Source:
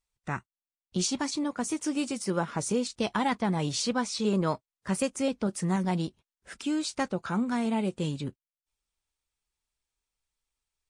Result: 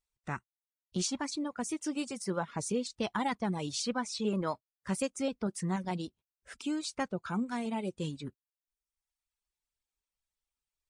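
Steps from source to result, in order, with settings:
reverb reduction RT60 1 s
level −4 dB

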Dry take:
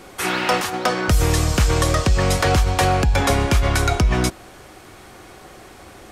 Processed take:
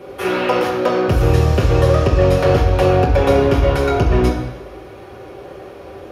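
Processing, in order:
thirty-one-band graphic EQ 200 Hz −10 dB, 315 Hz +4 dB, 500 Hz +11 dB, 8,000 Hz −11 dB
in parallel at −4.5 dB: soft clipping −20 dBFS, distortion −8 dB
on the sum: convolution reverb RT60 1.1 s, pre-delay 3 ms, DRR −3 dB
level −12 dB

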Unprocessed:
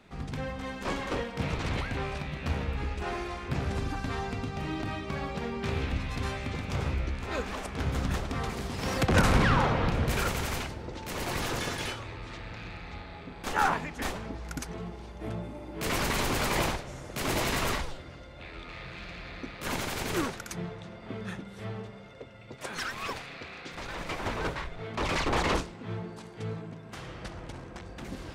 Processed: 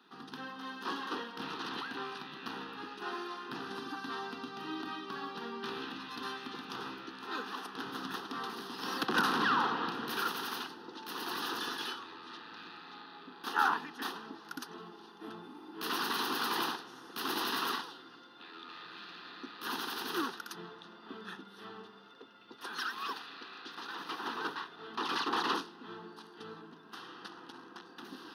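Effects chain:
high-pass filter 270 Hz 24 dB per octave
phaser with its sweep stopped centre 2,200 Hz, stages 6

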